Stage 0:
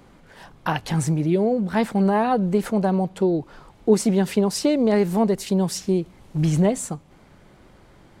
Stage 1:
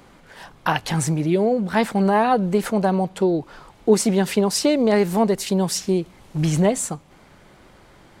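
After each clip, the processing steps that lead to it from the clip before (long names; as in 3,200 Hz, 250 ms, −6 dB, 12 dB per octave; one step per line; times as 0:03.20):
low-shelf EQ 490 Hz −6 dB
level +5 dB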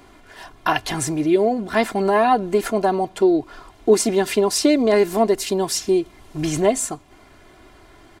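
comb filter 2.9 ms, depth 69%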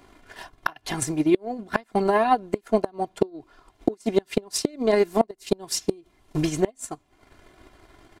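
transient designer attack +11 dB, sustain −9 dB
gate with flip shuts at −1 dBFS, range −26 dB
level −5.5 dB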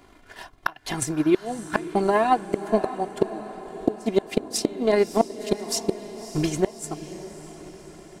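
feedback delay with all-pass diffusion 597 ms, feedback 55%, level −13 dB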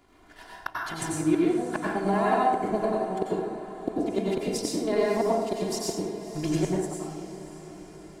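dense smooth reverb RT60 1.1 s, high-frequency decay 0.55×, pre-delay 80 ms, DRR −4.5 dB
level −8.5 dB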